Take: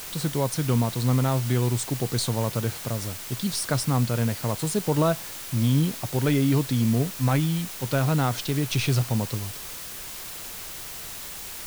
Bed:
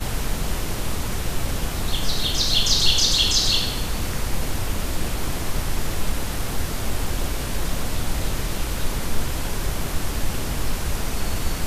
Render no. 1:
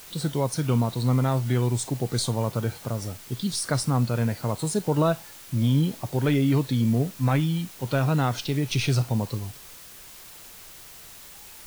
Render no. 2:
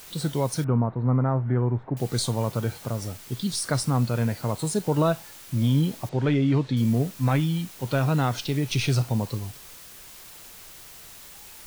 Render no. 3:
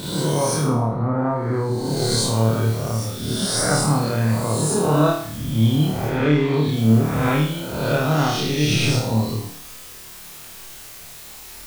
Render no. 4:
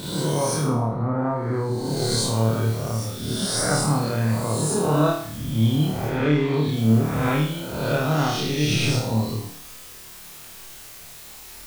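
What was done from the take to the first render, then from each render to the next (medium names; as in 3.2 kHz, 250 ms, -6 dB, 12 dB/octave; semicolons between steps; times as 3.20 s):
noise print and reduce 8 dB
0.64–1.97 s: low-pass 1.6 kHz 24 dB/octave; 6.09–6.77 s: distance through air 120 m
reverse spectral sustain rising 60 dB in 1.16 s; flutter echo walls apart 4.6 m, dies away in 0.57 s
trim -2.5 dB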